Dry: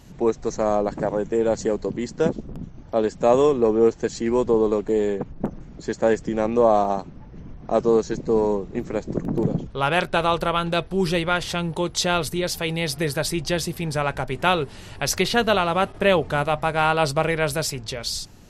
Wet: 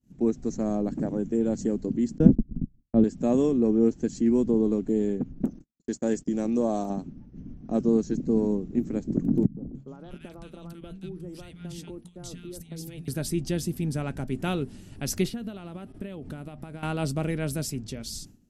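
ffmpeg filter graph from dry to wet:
ffmpeg -i in.wav -filter_complex "[0:a]asettb=1/sr,asplit=3[link_01][link_02][link_03];[link_01]atrim=end=2.184[link_04];[link_02]atrim=start=2.18:end=3.04,asetpts=PTS-STARTPTS,afade=type=in:duration=0.004:curve=qsin,afade=type=out:start_time=0.856:duration=0.004:curve=qsin,agate=range=-29dB:threshold=-32dB:ratio=16:release=100:detection=peak,aemphasis=mode=reproduction:type=riaa[link_05];[link_03]atrim=start=3.036[link_06];[link_04][link_05]acrossfade=duration=0.004:curve1=hsin:curve2=qsin[link_07];[link_07][link_06]acrossfade=duration=0.004:curve1=qsin:curve2=hsin,asettb=1/sr,asplit=3[link_08][link_09][link_10];[link_08]atrim=end=5.444[link_11];[link_09]atrim=start=5.44:end=6.9,asetpts=PTS-STARTPTS,afade=type=in:duration=0.004:curve=qsin,afade=type=out:start_time=1.456:duration=0.004:curve=qsin,agate=range=-30dB:threshold=-37dB:ratio=16:release=100:detection=peak,bass=frequency=250:gain=-6,treble=frequency=4000:gain=9[link_12];[link_10]atrim=start=6.896[link_13];[link_11][link_12]acrossfade=duration=0.004:curve1=hsin:curve2=qsin[link_14];[link_14][link_13]acrossfade=duration=0.004:curve1=qsin:curve2=hsin,asettb=1/sr,asplit=3[link_15][link_16][link_17];[link_15]atrim=end=9.464[link_18];[link_16]atrim=start=9.46:end=13.08,asetpts=PTS-STARTPTS,afade=type=in:duration=0.004:curve=qsin,afade=type=out:start_time=3.616:duration=0.004:curve=qsin,acompressor=threshold=-30dB:ratio=10:attack=3.2:release=140:knee=1:detection=peak,acrossover=split=190|1400[link_19][link_20][link_21];[link_20]adelay=110[link_22];[link_21]adelay=290[link_23];[link_19][link_22][link_23]amix=inputs=3:normalize=0,atrim=end_sample=159642[link_24];[link_17]atrim=start=13.076[link_25];[link_18][link_24]acrossfade=duration=0.004:curve1=hsin:curve2=qsin[link_26];[link_26][link_25]acrossfade=duration=0.004:curve1=qsin:curve2=hsin,asettb=1/sr,asplit=3[link_27][link_28][link_29];[link_27]atrim=end=15.294[link_30];[link_28]atrim=start=15.29:end=16.83,asetpts=PTS-STARTPTS,afade=type=in:duration=0.004:curve=qsin,afade=type=out:start_time=1.536:duration=0.004:curve=qsin,equalizer=frequency=6500:width_type=o:width=0.34:gain=-5.5,acompressor=threshold=-28dB:ratio=12:attack=3.2:release=140:knee=1:detection=peak[link_31];[link_29]atrim=start=16.826[link_32];[link_30][link_31]acrossfade=duration=0.004:curve1=hsin:curve2=qsin[link_33];[link_33][link_32]acrossfade=duration=0.004:curve1=qsin:curve2=hsin,agate=range=-33dB:threshold=-36dB:ratio=3:detection=peak,equalizer=frequency=250:width_type=o:width=1:gain=11,equalizer=frequency=500:width_type=o:width=1:gain=-6,equalizer=frequency=1000:width_type=o:width=1:gain=-11,equalizer=frequency=2000:width_type=o:width=1:gain=-6,equalizer=frequency=4000:width_type=o:width=1:gain=-7,volume=-4.5dB" out.wav

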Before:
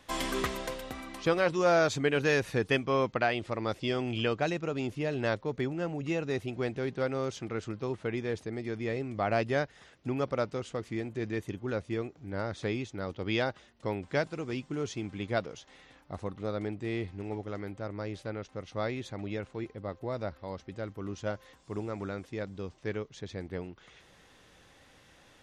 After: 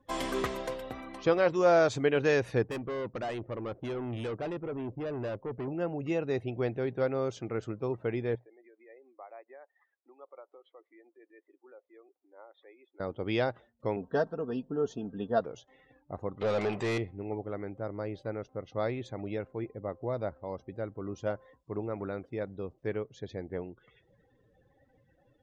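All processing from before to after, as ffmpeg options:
ffmpeg -i in.wav -filter_complex "[0:a]asettb=1/sr,asplit=3[link_01][link_02][link_03];[link_01]atrim=end=2.624[link_04];[link_02]atrim=start=2.62:end=5.68,asetpts=PTS-STARTPTS,afade=type=in:duration=0.004:curve=qsin,afade=type=out:start_time=3.056:duration=0.004:curve=qsin,adynamicsmooth=sensitivity=5:basefreq=980,asoftclip=type=hard:threshold=-33.5dB[link_05];[link_03]atrim=start=5.676[link_06];[link_04][link_05]acrossfade=duration=0.004:curve1=hsin:curve2=qsin[link_07];[link_07][link_06]acrossfade=duration=0.004:curve1=qsin:curve2=hsin,asettb=1/sr,asplit=3[link_08][link_09][link_10];[link_08]atrim=end=8.354[link_11];[link_09]atrim=start=8.35:end=13,asetpts=PTS-STARTPTS,afade=type=in:duration=0.004:curve=qsin,afade=type=out:start_time=4.646:duration=0.004:curve=qsin,acompressor=threshold=-41dB:ratio=4:attack=3.2:release=140:knee=1:detection=peak,tremolo=f=6.9:d=0.28,highpass=frequency=450:width=0.5412,highpass=frequency=450:width=1.3066,equalizer=frequency=450:width_type=q:width=4:gain=-8,equalizer=frequency=640:width_type=q:width=4:gain=-6,equalizer=frequency=1500:width_type=q:width=4:gain=-6,equalizer=frequency=2800:width_type=q:width=4:gain=-10,lowpass=frequency=3300:width=0.5412,lowpass=frequency=3300:width=1.3066[link_12];[link_10]atrim=start=12.996[link_13];[link_11][link_12]acrossfade=duration=0.004:curve1=hsin:curve2=qsin[link_14];[link_14][link_13]acrossfade=duration=0.004:curve1=qsin:curve2=hsin,asettb=1/sr,asplit=3[link_15][link_16][link_17];[link_15]atrim=end=13.964[link_18];[link_16]atrim=start=13.96:end=15.41,asetpts=PTS-STARTPTS,afade=type=in:duration=0.004:curve=qsin,afade=type=out:start_time=1.446:duration=0.004:curve=qsin,asuperstop=centerf=2200:order=4:qfactor=2.6,highshelf=frequency=2800:gain=-7.5,aecho=1:1:4.4:0.64,atrim=end_sample=63945[link_19];[link_17]atrim=start=15.406[link_20];[link_18][link_19]acrossfade=duration=0.004:curve1=hsin:curve2=qsin[link_21];[link_21][link_20]acrossfade=duration=0.004:curve1=qsin:curve2=hsin,asettb=1/sr,asplit=3[link_22][link_23][link_24];[link_22]atrim=end=16.414[link_25];[link_23]atrim=start=16.41:end=16.98,asetpts=PTS-STARTPTS,afade=type=in:duration=0.004:curve=qsin,afade=type=out:start_time=0.566:duration=0.004:curve=qsin,equalizer=frequency=300:width_type=o:width=0.28:gain=-13,asplit=2[link_26][link_27];[link_27]highpass=frequency=720:poles=1,volume=28dB,asoftclip=type=tanh:threshold=-24dB[link_28];[link_26][link_28]amix=inputs=2:normalize=0,lowpass=frequency=7400:poles=1,volume=-6dB[link_29];[link_24]atrim=start=16.976[link_30];[link_25][link_29]acrossfade=duration=0.004:curve1=hsin:curve2=qsin[link_31];[link_31][link_30]acrossfade=duration=0.004:curve1=qsin:curve2=hsin,equalizer=frequency=120:width=6.8:gain=6.5,afftdn=noise_reduction=26:noise_floor=-53,equalizer=frequency=530:width=0.6:gain=6.5,volume=-4dB" out.wav

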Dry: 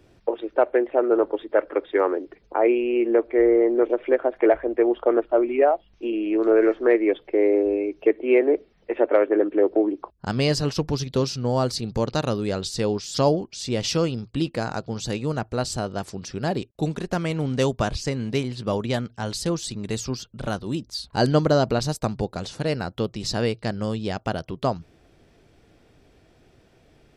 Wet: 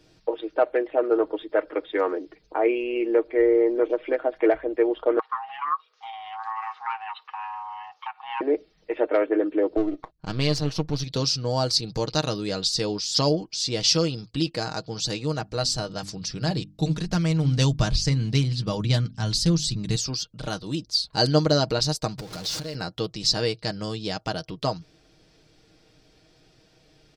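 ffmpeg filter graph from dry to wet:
ffmpeg -i in.wav -filter_complex "[0:a]asettb=1/sr,asplit=3[link_01][link_02][link_03];[link_01]atrim=end=5.194[link_04];[link_02]atrim=start=5.19:end=8.41,asetpts=PTS-STARTPTS,afade=type=in:duration=0.004:curve=qsin,afade=type=out:start_time=3.216:duration=0.004:curve=qsin,aeval=exprs='val(0)*sin(2*PI*440*n/s)':channel_layout=same,acompressor=threshold=-30dB:ratio=2:attack=3.2:release=140:knee=1:detection=peak,highpass=frequency=1200:width_type=q:width=5.6[link_05];[link_03]atrim=start=8.406[link_06];[link_04][link_05]acrossfade=duration=0.004:curve1=hsin:curve2=qsin[link_07];[link_07][link_06]acrossfade=duration=0.004:curve1=qsin:curve2=hsin,asettb=1/sr,asplit=3[link_08][link_09][link_10];[link_08]atrim=end=9.774[link_11];[link_09]atrim=start=9.77:end=11.04,asetpts=PTS-STARTPTS,afade=type=in:duration=0.004:curve=qsin,afade=type=out:start_time=1.266:duration=0.004:curve=qsin,aeval=exprs='if(lt(val(0),0),0.447*val(0),val(0))':channel_layout=same,bass=frequency=250:gain=2,treble=frequency=4000:gain=-6,bandreject=frequency=5000:width=9.7[link_12];[link_10]atrim=start=11.036[link_13];[link_11][link_12]acrossfade=duration=0.004:curve1=hsin:curve2=qsin[link_14];[link_14][link_13]acrossfade=duration=0.004:curve1=qsin:curve2=hsin,asettb=1/sr,asplit=3[link_15][link_16][link_17];[link_15]atrim=end=15.364[link_18];[link_16]atrim=start=15.36:end=19.96,asetpts=PTS-STARTPTS,afade=type=in:duration=0.004:curve=qsin,afade=type=out:start_time=4.596:duration=0.004:curve=qsin,bandreject=frequency=50:width_type=h:width=6,bandreject=frequency=100:width_type=h:width=6,bandreject=frequency=150:width_type=h:width=6,bandreject=frequency=200:width_type=h:width=6,bandreject=frequency=250:width_type=h:width=6,bandreject=frequency=300:width_type=h:width=6,asubboost=boost=5.5:cutoff=200[link_19];[link_17]atrim=start=19.956[link_20];[link_18][link_19]acrossfade=duration=0.004:curve1=hsin:curve2=qsin[link_21];[link_21][link_20]acrossfade=duration=0.004:curve1=qsin:curve2=hsin,asettb=1/sr,asplit=3[link_22][link_23][link_24];[link_22]atrim=end=22.184[link_25];[link_23]atrim=start=22.18:end=22.75,asetpts=PTS-STARTPTS,afade=type=in:duration=0.004:curve=qsin,afade=type=out:start_time=0.566:duration=0.004:curve=qsin,aeval=exprs='val(0)+0.5*0.0335*sgn(val(0))':channel_layout=same,acompressor=threshold=-31dB:ratio=4:attack=3.2:release=140:knee=1:detection=peak[link_26];[link_24]atrim=start=22.746[link_27];[link_25][link_26]acrossfade=duration=0.004:curve1=hsin:curve2=qsin[link_28];[link_28][link_27]acrossfade=duration=0.004:curve1=qsin:curve2=hsin,equalizer=frequency=4800:width_type=o:width=1.1:gain=12,aecho=1:1:6.4:0.52,volume=-4dB" out.wav

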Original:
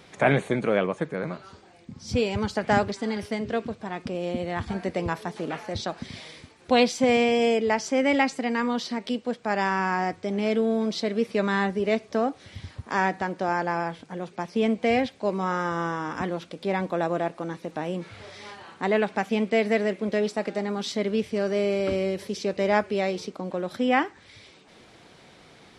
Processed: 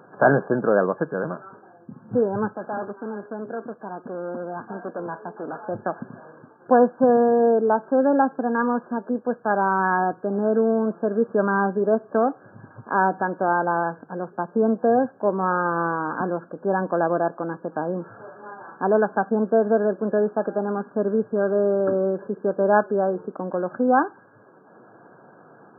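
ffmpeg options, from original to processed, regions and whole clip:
ffmpeg -i in.wav -filter_complex "[0:a]asettb=1/sr,asplit=3[link_01][link_02][link_03];[link_01]atrim=end=2.534[link_04];[link_02]atrim=start=2.53:end=5.63,asetpts=PTS-STARTPTS,afade=type=in:duration=0.004:curve=qsin,afade=type=out:start_time=3.096:duration=0.004:curve=qsin,highpass=220,aeval=exprs='(tanh(31.6*val(0)+0.5)-tanh(0.5))/31.6':channel_layout=same[link_05];[link_03]atrim=start=5.626[link_06];[link_04][link_05]acrossfade=duration=0.004:curve1=hsin:curve2=qsin[link_07];[link_07][link_06]acrossfade=duration=0.004:curve1=qsin:curve2=hsin,afftfilt=real='re*between(b*sr/4096,100,1700)':imag='im*between(b*sr/4096,100,1700)':win_size=4096:overlap=0.75,lowshelf=frequency=140:gain=-11,volume=5.5dB" out.wav

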